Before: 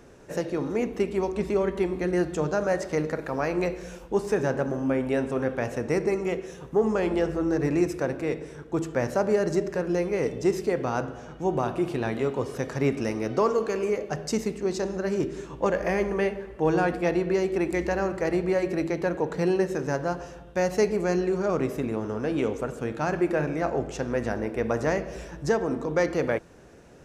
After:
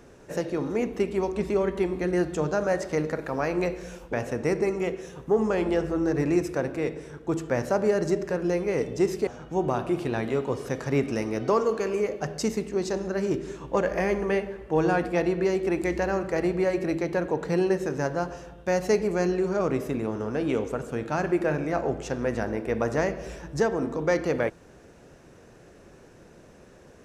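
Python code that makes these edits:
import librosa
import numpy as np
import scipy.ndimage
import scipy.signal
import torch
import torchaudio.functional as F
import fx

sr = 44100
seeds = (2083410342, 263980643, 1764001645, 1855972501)

y = fx.edit(x, sr, fx.cut(start_s=4.13, length_s=1.45),
    fx.cut(start_s=10.72, length_s=0.44), tone=tone)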